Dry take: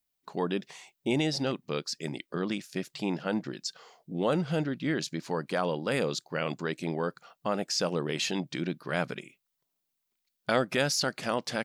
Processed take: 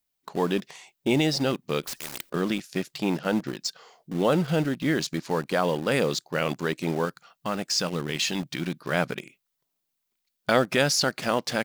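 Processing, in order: 7.05–8.79 s: peaking EQ 520 Hz -7 dB 1.9 oct; in parallel at -8 dB: bit crusher 6-bit; 1.83–2.30 s: on the sum: spectrum-flattening compressor 4:1; trim +2 dB

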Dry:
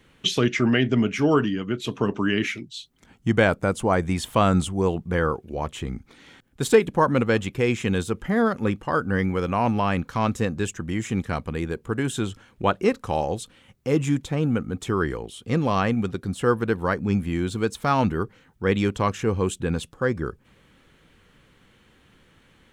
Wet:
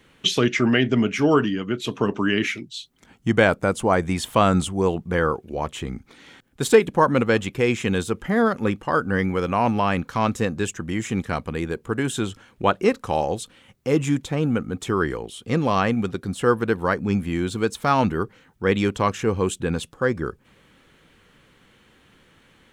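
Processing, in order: bass shelf 140 Hz -5.5 dB; trim +2.5 dB

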